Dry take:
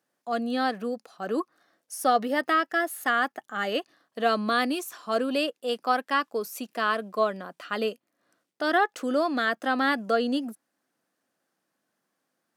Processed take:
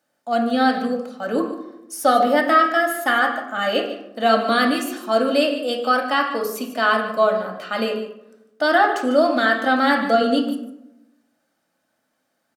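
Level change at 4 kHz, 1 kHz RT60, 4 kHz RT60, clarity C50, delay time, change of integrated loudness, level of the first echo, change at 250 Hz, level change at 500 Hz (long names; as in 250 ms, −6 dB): +7.5 dB, 0.80 s, 0.50 s, 6.5 dB, 148 ms, +7.5 dB, −13.0 dB, +8.0 dB, +8.5 dB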